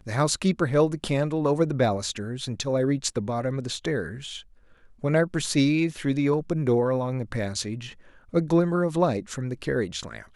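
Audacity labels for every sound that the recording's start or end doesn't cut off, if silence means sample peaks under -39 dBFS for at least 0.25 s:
5.030000	7.930000	sound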